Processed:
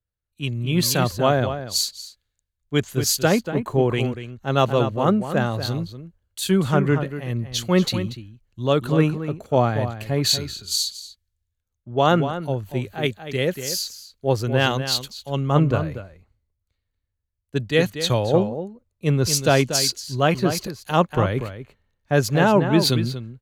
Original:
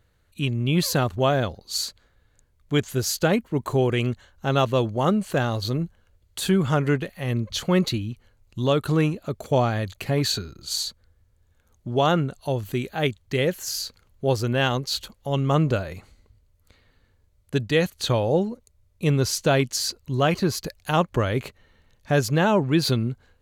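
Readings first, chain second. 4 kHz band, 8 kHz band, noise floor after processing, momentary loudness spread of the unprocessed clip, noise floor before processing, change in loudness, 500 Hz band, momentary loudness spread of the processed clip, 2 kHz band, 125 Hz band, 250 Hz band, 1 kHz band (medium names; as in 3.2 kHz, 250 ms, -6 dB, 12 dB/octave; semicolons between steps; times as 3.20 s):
+3.5 dB, +4.5 dB, -79 dBFS, 9 LU, -64 dBFS, +2.5 dB, +2.0 dB, 11 LU, +2.0 dB, +1.5 dB, +2.0 dB, +2.5 dB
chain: echo from a far wall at 41 m, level -7 dB; three bands expanded up and down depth 70%; trim +1 dB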